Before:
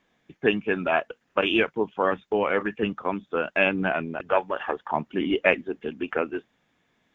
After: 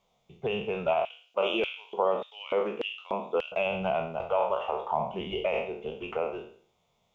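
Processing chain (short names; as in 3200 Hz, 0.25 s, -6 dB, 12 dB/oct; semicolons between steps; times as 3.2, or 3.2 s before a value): spectral trails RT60 0.51 s; limiter -13 dBFS, peak gain reduction 10 dB; fixed phaser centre 700 Hz, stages 4; 1.05–3.52 LFO high-pass square 1.7 Hz 280–3100 Hz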